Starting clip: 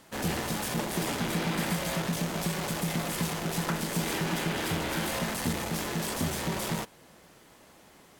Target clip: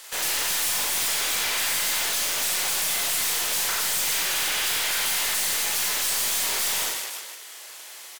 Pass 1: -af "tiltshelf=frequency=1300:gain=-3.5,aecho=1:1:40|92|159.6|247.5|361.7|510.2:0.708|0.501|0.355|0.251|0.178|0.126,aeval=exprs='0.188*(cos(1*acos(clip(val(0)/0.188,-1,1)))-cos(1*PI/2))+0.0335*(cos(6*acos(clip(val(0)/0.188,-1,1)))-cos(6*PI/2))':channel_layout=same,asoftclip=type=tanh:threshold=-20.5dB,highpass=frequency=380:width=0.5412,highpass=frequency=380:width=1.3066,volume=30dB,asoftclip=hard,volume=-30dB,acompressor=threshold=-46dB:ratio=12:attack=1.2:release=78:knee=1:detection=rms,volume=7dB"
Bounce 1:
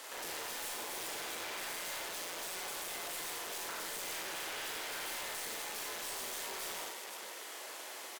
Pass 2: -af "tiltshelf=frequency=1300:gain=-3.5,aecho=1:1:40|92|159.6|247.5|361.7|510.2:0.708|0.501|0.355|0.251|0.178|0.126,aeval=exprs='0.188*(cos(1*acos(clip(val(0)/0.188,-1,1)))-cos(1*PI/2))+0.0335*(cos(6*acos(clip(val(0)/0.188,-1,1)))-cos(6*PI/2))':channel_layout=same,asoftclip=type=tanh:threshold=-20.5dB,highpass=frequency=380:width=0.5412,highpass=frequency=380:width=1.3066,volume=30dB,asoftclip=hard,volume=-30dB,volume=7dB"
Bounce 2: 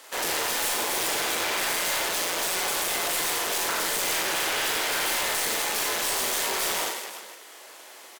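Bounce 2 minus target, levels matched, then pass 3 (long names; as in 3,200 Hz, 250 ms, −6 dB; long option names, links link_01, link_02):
1,000 Hz band +6.5 dB
-af "tiltshelf=frequency=1300:gain=-11,aecho=1:1:40|92|159.6|247.5|361.7|510.2:0.708|0.501|0.355|0.251|0.178|0.126,aeval=exprs='0.188*(cos(1*acos(clip(val(0)/0.188,-1,1)))-cos(1*PI/2))+0.0335*(cos(6*acos(clip(val(0)/0.188,-1,1)))-cos(6*PI/2))':channel_layout=same,asoftclip=type=tanh:threshold=-20.5dB,highpass=frequency=380:width=0.5412,highpass=frequency=380:width=1.3066,volume=30dB,asoftclip=hard,volume=-30dB,volume=7dB"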